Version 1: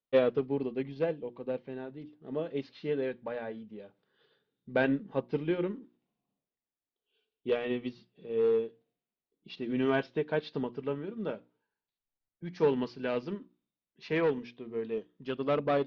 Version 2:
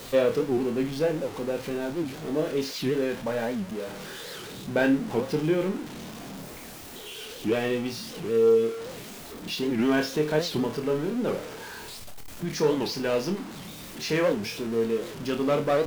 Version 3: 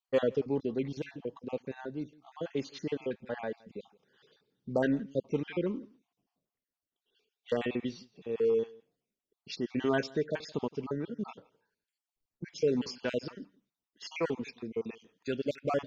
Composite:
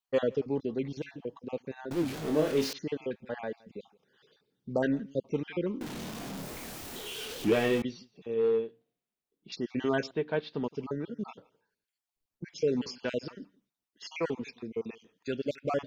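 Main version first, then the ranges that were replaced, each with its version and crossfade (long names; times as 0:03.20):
3
0:01.91–0:02.73: punch in from 2
0:05.81–0:07.82: punch in from 2
0:08.34–0:09.52: punch in from 1
0:10.11–0:10.64: punch in from 1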